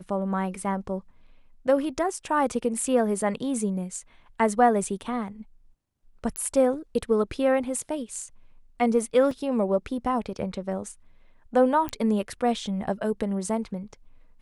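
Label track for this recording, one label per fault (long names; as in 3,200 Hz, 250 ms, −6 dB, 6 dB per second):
4.840000	4.840000	drop-out 3.5 ms
6.360000	6.360000	click −14 dBFS
9.310000	9.310000	drop-out 3.1 ms
11.890000	11.890000	click −15 dBFS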